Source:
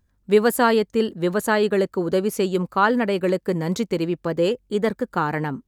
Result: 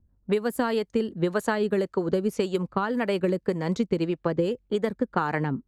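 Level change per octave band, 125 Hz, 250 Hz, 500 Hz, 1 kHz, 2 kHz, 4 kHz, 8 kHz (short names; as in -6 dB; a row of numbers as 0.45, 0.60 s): -2.5, -3.5, -5.5, -7.0, -7.0, -7.0, -10.5 dB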